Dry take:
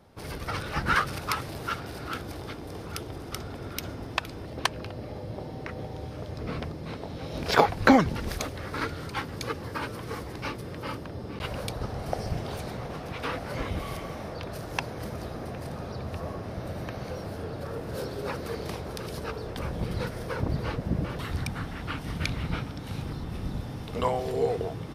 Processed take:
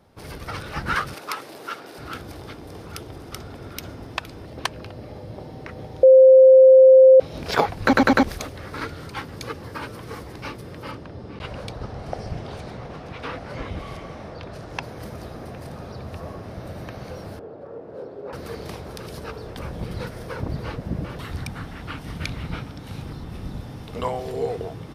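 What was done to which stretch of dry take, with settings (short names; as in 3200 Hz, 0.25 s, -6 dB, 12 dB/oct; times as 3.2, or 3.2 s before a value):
1.14–1.98 Chebyshev high-pass 340 Hz
6.03–7.2 bleep 524 Hz -6.5 dBFS
7.83 stutter in place 0.10 s, 4 plays
10.91–14.83 air absorption 56 m
17.39–18.33 band-pass 490 Hz, Q 1.1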